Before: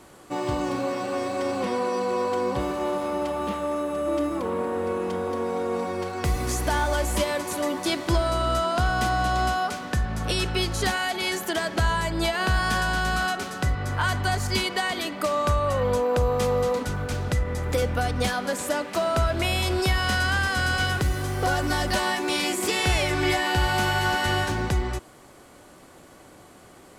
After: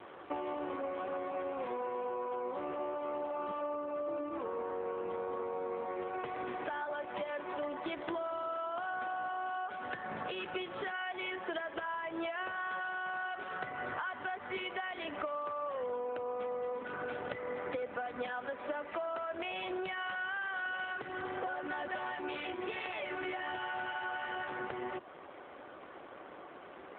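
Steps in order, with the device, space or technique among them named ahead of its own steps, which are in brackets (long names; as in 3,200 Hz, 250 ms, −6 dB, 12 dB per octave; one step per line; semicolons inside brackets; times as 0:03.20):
voicemail (band-pass filter 370–2,800 Hz; downward compressor 12 to 1, threshold −38 dBFS, peak gain reduction 17 dB; level +4 dB; AMR narrowband 7.4 kbit/s 8,000 Hz)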